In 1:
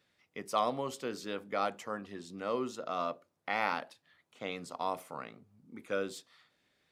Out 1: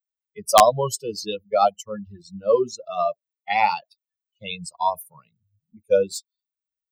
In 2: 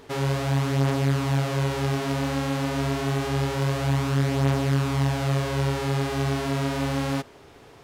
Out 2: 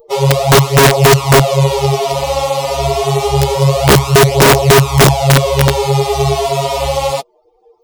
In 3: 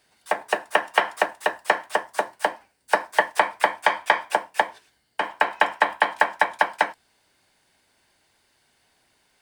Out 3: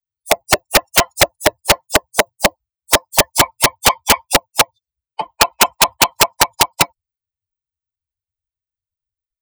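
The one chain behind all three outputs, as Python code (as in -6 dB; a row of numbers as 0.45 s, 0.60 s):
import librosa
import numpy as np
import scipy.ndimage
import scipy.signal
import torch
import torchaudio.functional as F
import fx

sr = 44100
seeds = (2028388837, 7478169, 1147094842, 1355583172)

y = fx.bin_expand(x, sr, power=3.0)
y = fx.fixed_phaser(y, sr, hz=660.0, stages=4)
y = (np.mod(10.0 ** (24.5 / 20.0) * y + 1.0, 2.0) - 1.0) / 10.0 ** (24.5 / 20.0)
y = librosa.util.normalize(y) * 10.0 ** (-1.5 / 20.0)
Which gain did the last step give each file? +23.0 dB, +23.0 dB, +23.0 dB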